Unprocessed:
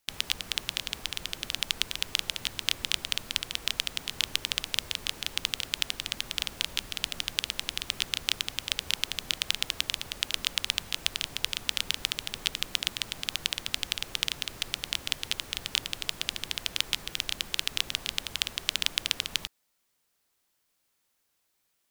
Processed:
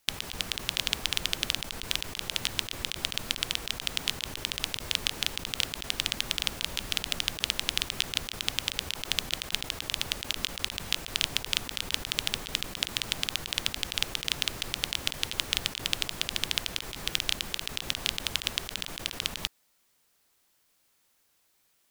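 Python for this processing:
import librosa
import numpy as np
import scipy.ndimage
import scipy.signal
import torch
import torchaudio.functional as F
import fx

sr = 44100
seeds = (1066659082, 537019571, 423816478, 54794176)

y = fx.over_compress(x, sr, threshold_db=-32.0, ratio=-0.5)
y = F.gain(torch.from_numpy(y), 3.0).numpy()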